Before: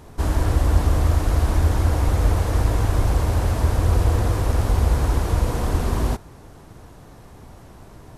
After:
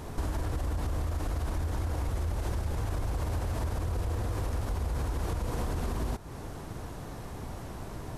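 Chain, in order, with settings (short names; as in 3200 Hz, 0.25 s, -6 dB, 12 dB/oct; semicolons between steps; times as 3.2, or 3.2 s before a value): limiter -16.5 dBFS, peak gain reduction 11.5 dB; compressor 5:1, threshold -33 dBFS, peak gain reduction 12 dB; 2.1–2.77 frequency shift -130 Hz; gain +3.5 dB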